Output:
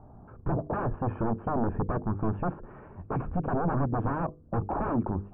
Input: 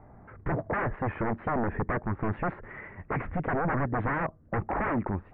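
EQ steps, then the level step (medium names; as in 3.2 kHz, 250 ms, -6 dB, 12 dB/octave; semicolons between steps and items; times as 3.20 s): boxcar filter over 22 samples; peaking EQ 540 Hz -3 dB 0.58 oct; hum notches 50/100/150/200/250/300/350/400/450/500 Hz; +3.0 dB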